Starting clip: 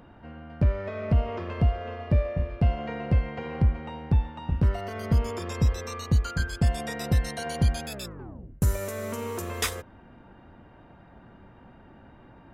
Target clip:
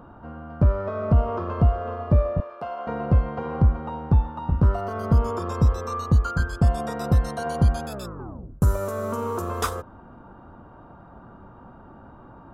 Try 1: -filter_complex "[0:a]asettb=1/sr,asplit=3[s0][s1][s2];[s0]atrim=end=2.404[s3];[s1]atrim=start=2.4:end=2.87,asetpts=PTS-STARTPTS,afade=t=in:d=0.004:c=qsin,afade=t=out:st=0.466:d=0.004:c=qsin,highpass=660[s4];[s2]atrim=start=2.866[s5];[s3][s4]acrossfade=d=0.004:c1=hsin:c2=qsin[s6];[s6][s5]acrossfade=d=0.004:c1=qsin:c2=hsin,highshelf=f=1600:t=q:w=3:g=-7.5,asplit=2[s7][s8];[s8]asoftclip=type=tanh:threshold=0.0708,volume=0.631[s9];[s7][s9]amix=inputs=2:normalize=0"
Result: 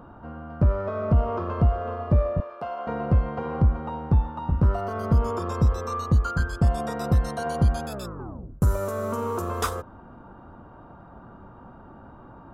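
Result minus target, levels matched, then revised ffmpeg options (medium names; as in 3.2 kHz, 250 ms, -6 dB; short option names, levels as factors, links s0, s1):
saturation: distortion +18 dB
-filter_complex "[0:a]asettb=1/sr,asplit=3[s0][s1][s2];[s0]atrim=end=2.404[s3];[s1]atrim=start=2.4:end=2.87,asetpts=PTS-STARTPTS,afade=t=in:d=0.004:c=qsin,afade=t=out:st=0.466:d=0.004:c=qsin,highpass=660[s4];[s2]atrim=start=2.866[s5];[s3][s4]acrossfade=d=0.004:c1=hsin:c2=qsin[s6];[s6][s5]acrossfade=d=0.004:c1=qsin:c2=hsin,highshelf=f=1600:t=q:w=3:g=-7.5,asplit=2[s7][s8];[s8]asoftclip=type=tanh:threshold=0.282,volume=0.631[s9];[s7][s9]amix=inputs=2:normalize=0"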